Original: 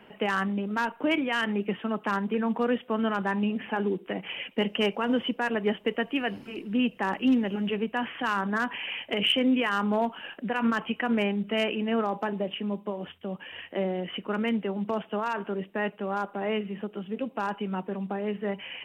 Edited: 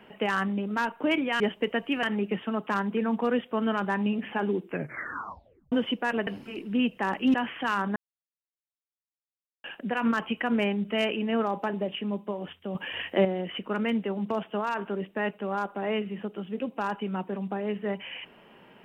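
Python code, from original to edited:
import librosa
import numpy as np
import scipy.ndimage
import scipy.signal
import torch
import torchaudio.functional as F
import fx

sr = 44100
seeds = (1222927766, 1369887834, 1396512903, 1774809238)

y = fx.edit(x, sr, fx.tape_stop(start_s=4.0, length_s=1.09),
    fx.move(start_s=5.64, length_s=0.63, to_s=1.4),
    fx.cut(start_s=7.34, length_s=0.59),
    fx.silence(start_s=8.55, length_s=1.68),
    fx.clip_gain(start_s=13.34, length_s=0.5, db=7.0), tone=tone)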